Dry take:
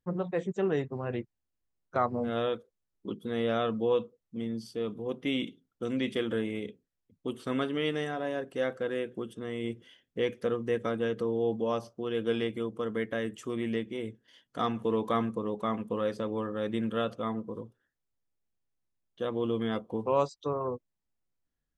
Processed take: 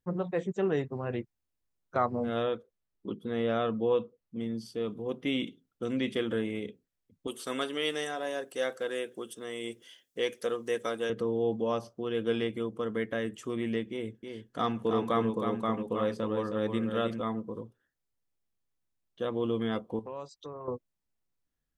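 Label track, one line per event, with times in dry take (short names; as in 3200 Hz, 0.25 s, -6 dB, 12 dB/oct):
2.430000	4.410000	high shelf 4900 Hz -9 dB
7.270000	11.100000	tone controls bass -14 dB, treble +13 dB
13.910000	17.210000	echo 0.317 s -6 dB
19.990000	20.680000	compressor 2.5:1, threshold -43 dBFS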